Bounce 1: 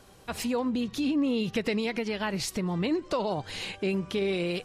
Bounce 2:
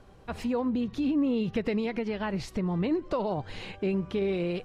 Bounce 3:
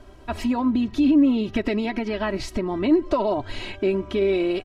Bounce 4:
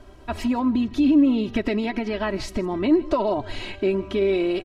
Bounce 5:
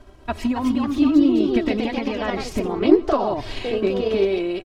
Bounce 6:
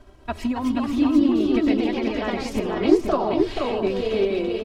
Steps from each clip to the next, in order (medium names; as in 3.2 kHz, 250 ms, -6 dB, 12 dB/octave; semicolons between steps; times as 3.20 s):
low-pass 1.5 kHz 6 dB/octave; bass shelf 68 Hz +8.5 dB
comb 3.1 ms, depth 85%; trim +5 dB
delay 158 ms -20.5 dB
ever faster or slower copies 304 ms, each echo +2 st, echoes 2; transient shaper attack +5 dB, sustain -1 dB; trim -1.5 dB
delay 480 ms -4.5 dB; trim -2.5 dB